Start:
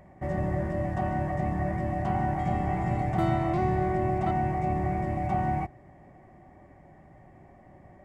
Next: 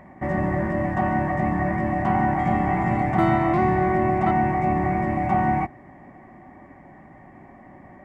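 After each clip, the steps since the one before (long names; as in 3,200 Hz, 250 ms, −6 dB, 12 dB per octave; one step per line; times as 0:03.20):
graphic EQ with 10 bands 250 Hz +11 dB, 1,000 Hz +9 dB, 2,000 Hz +9 dB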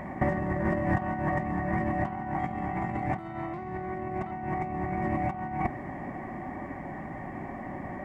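compressor whose output falls as the input rises −28 dBFS, ratio −0.5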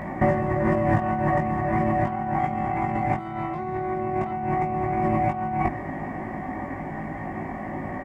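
double-tracking delay 19 ms −3 dB
level +4 dB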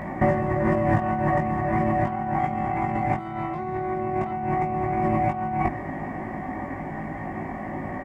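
no processing that can be heard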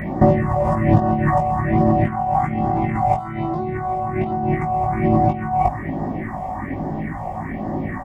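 all-pass phaser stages 4, 1.2 Hz, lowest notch 280–2,300 Hz
level +7.5 dB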